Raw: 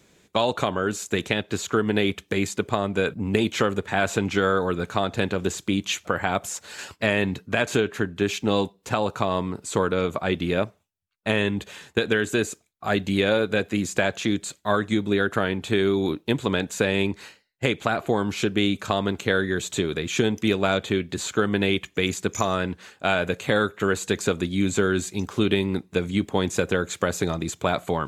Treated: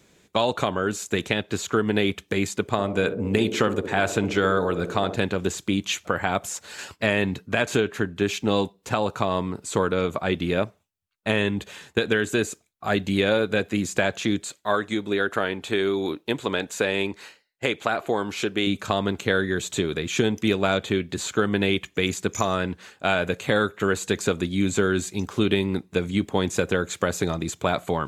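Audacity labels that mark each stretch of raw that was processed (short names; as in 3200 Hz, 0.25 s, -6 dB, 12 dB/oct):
2.640000	5.160000	narrowing echo 64 ms, feedback 82%, band-pass 360 Hz, level -9 dB
14.420000	18.670000	tone controls bass -9 dB, treble -1 dB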